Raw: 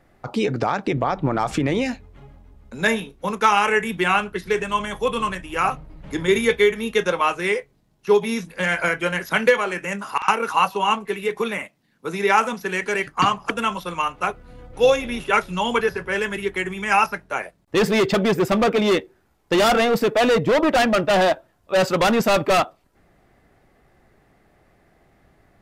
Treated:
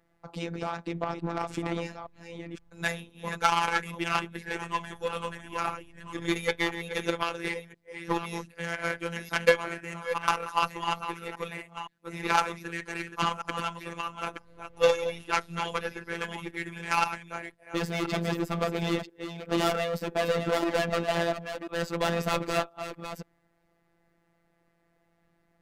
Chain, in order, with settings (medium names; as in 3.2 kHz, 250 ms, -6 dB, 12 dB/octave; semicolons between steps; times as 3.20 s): chunks repeated in reverse 516 ms, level -6.5 dB; Chebyshev shaper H 2 -18 dB, 3 -13 dB, 4 -23 dB, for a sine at -4 dBFS; robot voice 169 Hz; trim -1 dB